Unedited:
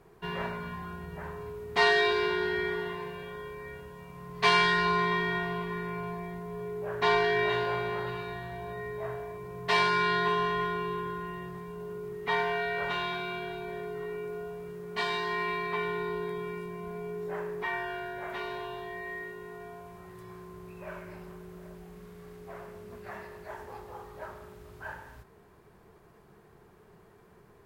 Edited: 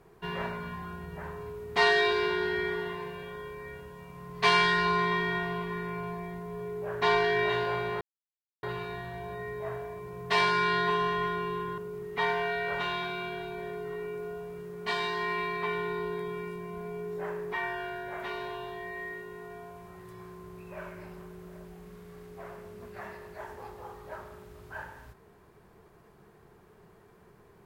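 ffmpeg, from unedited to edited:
-filter_complex "[0:a]asplit=3[s0][s1][s2];[s0]atrim=end=8.01,asetpts=PTS-STARTPTS,afade=t=out:st=8.006:d=0.004:c=hsin,apad=pad_dur=0.62[s3];[s1]atrim=start=8.01:end=11.162,asetpts=PTS-STARTPTS,afade=t=in:d=0.004:c=hsin[s4];[s2]atrim=start=11.878[s5];[s3][s4]concat=n=2:v=0:a=1[s6];[s6][s5]acrossfade=d=0.004:c1=hsin:c2=hsin"

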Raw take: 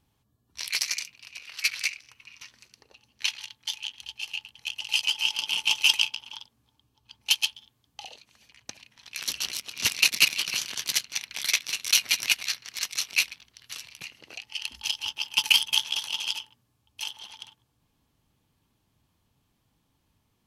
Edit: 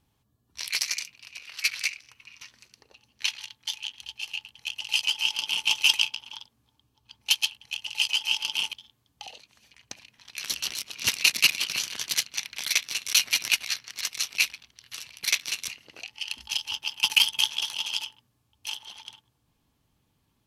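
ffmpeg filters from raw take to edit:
-filter_complex "[0:a]asplit=5[s0][s1][s2][s3][s4];[s0]atrim=end=7.512[s5];[s1]atrim=start=4.448:end=5.672[s6];[s2]atrim=start=7.508:end=14.022[s7];[s3]atrim=start=11.448:end=11.892[s8];[s4]atrim=start=14.018[s9];[s5][s6]acrossfade=d=0.004:c1=hsin:c2=hsin[s10];[s10][s7]acrossfade=d=0.004:c1=hsin:c2=hsin[s11];[s11][s8]acrossfade=d=0.004:c1=hsin:c2=hsin[s12];[s12][s9]acrossfade=d=0.004:c1=hsin:c2=hsin"

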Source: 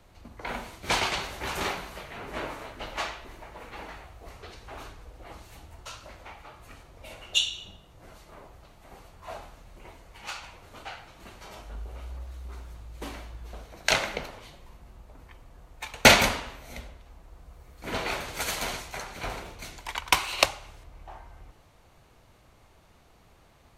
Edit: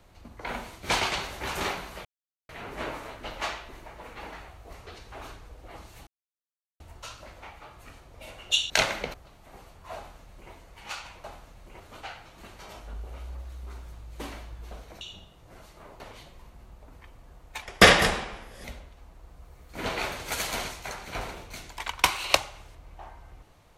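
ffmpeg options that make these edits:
-filter_complex "[0:a]asplit=11[s0][s1][s2][s3][s4][s5][s6][s7][s8][s9][s10];[s0]atrim=end=2.05,asetpts=PTS-STARTPTS,afade=t=out:st=2.046:d=0.004:c=hsin,apad=pad_dur=0.44[s11];[s1]atrim=start=2.05:end=5.63,asetpts=PTS-STARTPTS,afade=t=in:d=0.004:c=hsin,afade=t=out:st=3.576:d=0.004:c=hsin,apad=pad_dur=0.73[s12];[s2]atrim=start=5.63:end=7.532,asetpts=PTS-STARTPTS,afade=t=in:d=0.004:c=hsin[s13];[s3]atrim=start=13.828:end=14.272[s14];[s4]atrim=start=8.518:end=10.622[s15];[s5]atrim=start=9.338:end=9.902[s16];[s6]atrim=start=10.618:end=13.832[s17];[s7]atrim=start=7.528:end=8.522[s18];[s8]atrim=start=14.268:end=15.894[s19];[s9]atrim=start=15.89:end=16.73,asetpts=PTS-STARTPTS,asetrate=36162,aresample=44100[s20];[s10]atrim=start=16.726[s21];[s11][s12][s13]concat=n=3:v=0:a=1[s22];[s22][s14]acrossfade=d=0.004:c1=hsin:c2=hsin[s23];[s23][s15]acrossfade=d=0.004:c1=hsin:c2=hsin[s24];[s24][s16]acrossfade=d=0.004:c1=hsin:c2=hsin[s25];[s25][s17]acrossfade=d=0.004:c1=hsin:c2=hsin[s26];[s26][s18]acrossfade=d=0.004:c1=hsin:c2=hsin[s27];[s27][s19]acrossfade=d=0.004:c1=hsin:c2=hsin[s28];[s28][s20]acrossfade=d=0.004:c1=hsin:c2=hsin[s29];[s29][s21]acrossfade=d=0.004:c1=hsin:c2=hsin"

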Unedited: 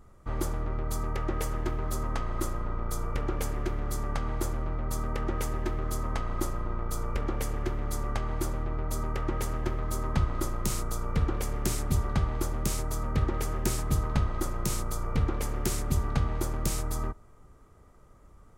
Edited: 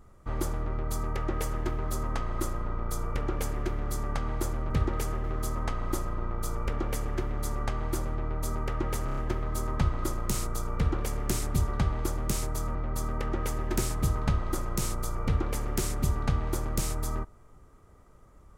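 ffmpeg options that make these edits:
-filter_complex "[0:a]asplit=9[s0][s1][s2][s3][s4][s5][s6][s7][s8];[s0]atrim=end=4.702[s9];[s1]atrim=start=13.108:end=13.652[s10];[s2]atrim=start=5.718:end=9.562[s11];[s3]atrim=start=9.528:end=9.562[s12];[s4]atrim=start=9.528:end=9.562[s13];[s5]atrim=start=9.528:end=9.562[s14];[s6]atrim=start=9.528:end=13.112[s15];[s7]atrim=start=4.698:end=5.722[s16];[s8]atrim=start=13.648[s17];[s9][s10]acrossfade=d=0.004:c1=hsin:c2=hsin[s18];[s18][s11]acrossfade=d=0.004:c1=hsin:c2=hsin[s19];[s19][s12]acrossfade=d=0.004:c1=hsin:c2=hsin[s20];[s20][s13]acrossfade=d=0.004:c1=hsin:c2=hsin[s21];[s21][s14]acrossfade=d=0.004:c1=hsin:c2=hsin[s22];[s22][s15]acrossfade=d=0.004:c1=hsin:c2=hsin[s23];[s23][s16]acrossfade=d=0.004:c1=hsin:c2=hsin[s24];[s24][s17]acrossfade=d=0.004:c1=hsin:c2=hsin"

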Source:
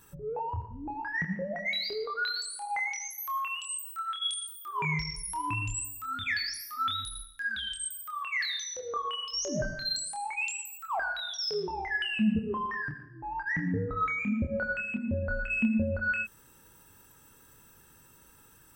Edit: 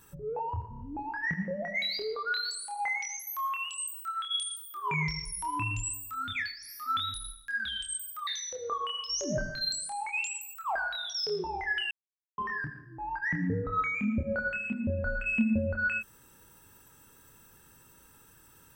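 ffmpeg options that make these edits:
-filter_complex "[0:a]asplit=9[s0][s1][s2][s3][s4][s5][s6][s7][s8];[s0]atrim=end=0.732[s9];[s1]atrim=start=0.698:end=0.732[s10];[s2]atrim=start=0.698:end=0.732[s11];[s3]atrim=start=0.698:end=6.47,asetpts=PTS-STARTPTS,afade=t=out:st=5.532:d=0.24:silence=0.237137[s12];[s4]atrim=start=6.47:end=6.5,asetpts=PTS-STARTPTS,volume=0.237[s13];[s5]atrim=start=6.5:end=8.182,asetpts=PTS-STARTPTS,afade=t=in:d=0.24:silence=0.237137[s14];[s6]atrim=start=8.508:end=12.15,asetpts=PTS-STARTPTS,afade=t=out:st=3.638:d=0.004:c=hsin[s15];[s7]atrim=start=12.15:end=12.62,asetpts=PTS-STARTPTS,volume=0[s16];[s8]atrim=start=12.62,asetpts=PTS-STARTPTS,afade=t=in:d=0.004:c=hsin[s17];[s9][s10]acrossfade=d=0.004:c1=hsin:c2=hsin[s18];[s18][s11]acrossfade=d=0.004:c1=hsin:c2=hsin[s19];[s12][s13][s14]concat=n=3:v=0:a=1[s20];[s19][s20]acrossfade=d=0.004:c1=hsin:c2=hsin[s21];[s15][s16][s17]concat=n=3:v=0:a=1[s22];[s21][s22]acrossfade=d=0.004:c1=hsin:c2=hsin"

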